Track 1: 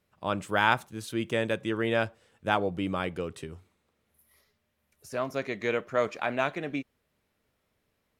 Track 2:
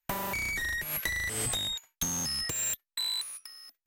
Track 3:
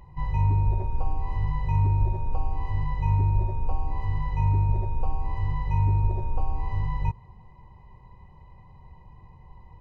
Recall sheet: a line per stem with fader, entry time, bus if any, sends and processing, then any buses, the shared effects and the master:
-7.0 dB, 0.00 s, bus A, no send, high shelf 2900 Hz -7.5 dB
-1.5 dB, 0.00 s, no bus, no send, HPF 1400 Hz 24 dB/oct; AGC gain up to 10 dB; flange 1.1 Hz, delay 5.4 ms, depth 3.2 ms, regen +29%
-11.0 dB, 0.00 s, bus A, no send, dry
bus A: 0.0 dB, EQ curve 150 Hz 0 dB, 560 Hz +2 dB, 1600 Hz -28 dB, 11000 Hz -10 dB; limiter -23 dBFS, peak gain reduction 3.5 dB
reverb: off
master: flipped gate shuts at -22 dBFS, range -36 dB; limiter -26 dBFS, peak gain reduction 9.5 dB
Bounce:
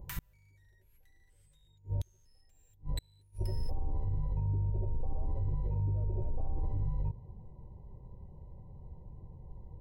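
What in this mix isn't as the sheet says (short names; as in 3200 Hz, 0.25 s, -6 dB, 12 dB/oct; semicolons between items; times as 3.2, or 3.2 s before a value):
stem 1 -7.0 dB -> -17.5 dB; stem 2: missing AGC gain up to 10 dB; stem 3 -11.0 dB -> +0.5 dB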